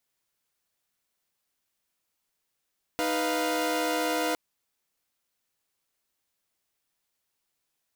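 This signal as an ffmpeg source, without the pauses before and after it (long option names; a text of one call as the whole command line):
ffmpeg -f lavfi -i "aevalsrc='0.0422*((2*mod(311.13*t,1)-1)+(2*mod(493.88*t,1)-1)+(2*mod(698.46*t,1)-1))':duration=1.36:sample_rate=44100" out.wav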